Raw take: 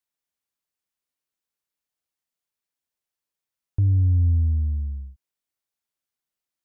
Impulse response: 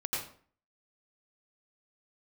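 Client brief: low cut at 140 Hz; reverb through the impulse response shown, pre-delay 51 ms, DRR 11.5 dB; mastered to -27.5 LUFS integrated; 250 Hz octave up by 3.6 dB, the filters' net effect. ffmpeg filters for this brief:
-filter_complex "[0:a]highpass=140,equalizer=f=250:t=o:g=4.5,asplit=2[a][b];[1:a]atrim=start_sample=2205,adelay=51[c];[b][c]afir=irnorm=-1:irlink=0,volume=-16.5dB[d];[a][d]amix=inputs=2:normalize=0,volume=2dB"

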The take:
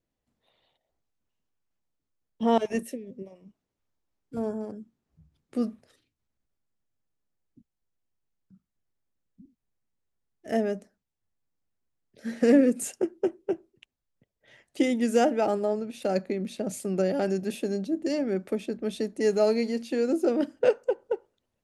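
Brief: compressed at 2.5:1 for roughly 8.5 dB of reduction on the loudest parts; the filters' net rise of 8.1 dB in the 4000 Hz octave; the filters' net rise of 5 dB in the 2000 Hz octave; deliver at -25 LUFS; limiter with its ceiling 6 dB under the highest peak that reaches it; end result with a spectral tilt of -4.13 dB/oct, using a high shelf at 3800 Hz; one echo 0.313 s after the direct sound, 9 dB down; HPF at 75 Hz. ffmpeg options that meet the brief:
-af "highpass=75,equalizer=f=2k:t=o:g=3.5,highshelf=f=3.8k:g=4.5,equalizer=f=4k:t=o:g=6.5,acompressor=threshold=-27dB:ratio=2.5,alimiter=limit=-21.5dB:level=0:latency=1,aecho=1:1:313:0.355,volume=8dB"

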